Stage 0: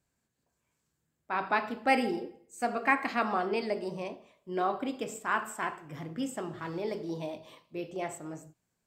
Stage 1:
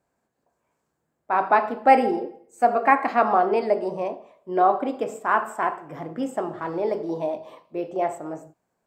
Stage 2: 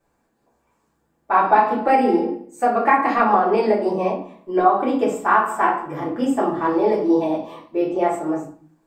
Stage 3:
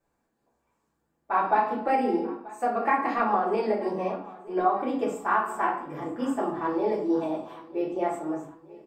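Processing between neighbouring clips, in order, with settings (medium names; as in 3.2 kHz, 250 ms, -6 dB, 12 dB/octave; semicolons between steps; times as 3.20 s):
FFT filter 110 Hz 0 dB, 720 Hz +15 dB, 3.3 kHz -1 dB; trim -1.5 dB
compression 6:1, threshold -19 dBFS, peak gain reduction 9.5 dB; reverberation RT60 0.40 s, pre-delay 3 ms, DRR -7 dB
feedback delay 935 ms, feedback 46%, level -20 dB; trim -8 dB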